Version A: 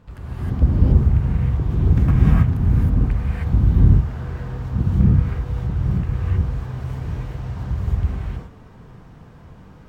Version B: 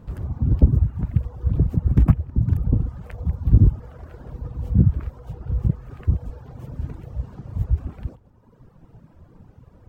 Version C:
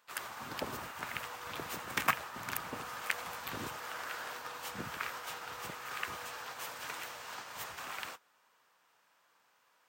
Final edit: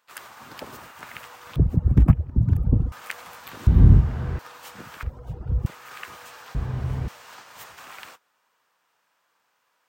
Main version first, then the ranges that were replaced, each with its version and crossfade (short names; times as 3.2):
C
1.56–2.92 from B
3.67–4.39 from A
5.03–5.66 from B
6.55–7.08 from A